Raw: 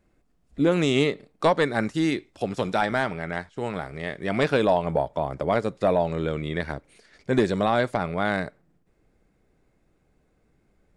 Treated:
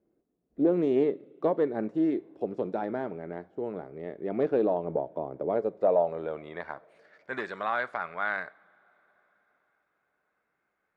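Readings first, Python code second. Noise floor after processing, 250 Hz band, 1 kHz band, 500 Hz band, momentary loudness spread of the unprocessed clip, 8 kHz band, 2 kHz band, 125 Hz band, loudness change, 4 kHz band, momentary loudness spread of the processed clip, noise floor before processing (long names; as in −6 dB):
−79 dBFS, −4.5 dB, −7.5 dB, −3.5 dB, 10 LU, can't be measured, −7.0 dB, −13.5 dB, −5.0 dB, below −15 dB, 14 LU, −67 dBFS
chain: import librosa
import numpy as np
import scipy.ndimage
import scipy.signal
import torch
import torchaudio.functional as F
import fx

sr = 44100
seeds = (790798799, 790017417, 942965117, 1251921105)

y = fx.filter_sweep_bandpass(x, sr, from_hz=370.0, to_hz=1400.0, start_s=5.43, end_s=7.12, q=1.8)
y = fx.rev_double_slope(y, sr, seeds[0], early_s=0.47, late_s=4.7, knee_db=-19, drr_db=18.0)
y = fx.doppler_dist(y, sr, depth_ms=0.1)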